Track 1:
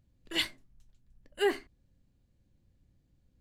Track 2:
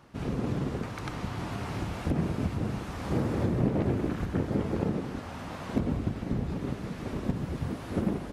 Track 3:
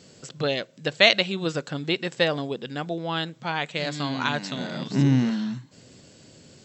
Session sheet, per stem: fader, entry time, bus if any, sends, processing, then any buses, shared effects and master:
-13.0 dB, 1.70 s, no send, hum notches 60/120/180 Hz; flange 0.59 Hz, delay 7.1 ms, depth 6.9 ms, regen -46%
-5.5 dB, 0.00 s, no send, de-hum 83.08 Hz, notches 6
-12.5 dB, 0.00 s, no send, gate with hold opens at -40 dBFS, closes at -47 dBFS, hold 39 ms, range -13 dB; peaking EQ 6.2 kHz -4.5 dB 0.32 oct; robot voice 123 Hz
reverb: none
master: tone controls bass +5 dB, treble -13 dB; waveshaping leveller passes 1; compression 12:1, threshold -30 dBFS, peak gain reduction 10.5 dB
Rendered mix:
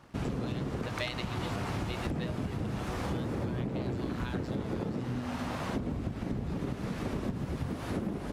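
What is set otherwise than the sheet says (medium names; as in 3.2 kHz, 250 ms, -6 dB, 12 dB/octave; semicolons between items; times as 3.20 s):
stem 1: entry 1.70 s -> 1.05 s; stem 2 -5.5 dB -> +1.0 dB; master: missing tone controls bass +5 dB, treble -13 dB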